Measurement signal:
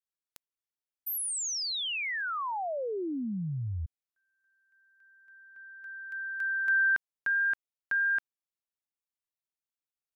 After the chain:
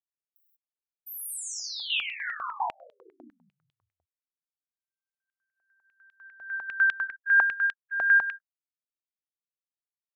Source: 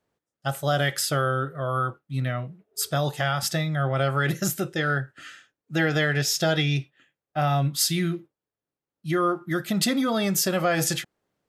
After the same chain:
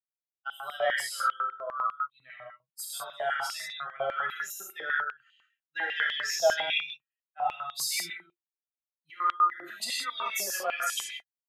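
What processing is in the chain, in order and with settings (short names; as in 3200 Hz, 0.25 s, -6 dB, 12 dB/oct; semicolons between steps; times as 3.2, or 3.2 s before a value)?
per-bin expansion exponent 2; non-linear reverb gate 0.21 s flat, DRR -4 dB; stepped high-pass 10 Hz 700–3300 Hz; gain -8 dB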